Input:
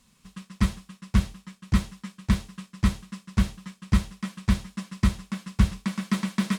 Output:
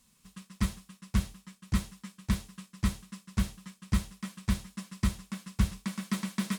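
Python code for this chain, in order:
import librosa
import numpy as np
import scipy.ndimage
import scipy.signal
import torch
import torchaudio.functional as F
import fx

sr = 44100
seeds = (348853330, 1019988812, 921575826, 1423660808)

y = fx.high_shelf(x, sr, hz=7700.0, db=11.0)
y = y * 10.0 ** (-6.5 / 20.0)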